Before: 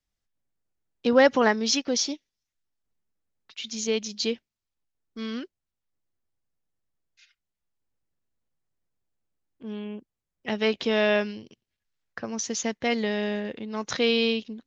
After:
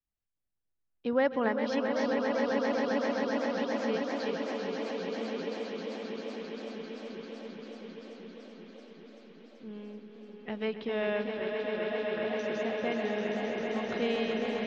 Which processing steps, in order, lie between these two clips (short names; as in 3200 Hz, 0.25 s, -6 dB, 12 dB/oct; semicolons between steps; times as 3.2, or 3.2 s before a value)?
air absorption 310 m; on a send: swelling echo 0.132 s, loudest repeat 8, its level -7.5 dB; on the sum: warbling echo 0.388 s, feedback 77%, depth 144 cents, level -11 dB; gain -8 dB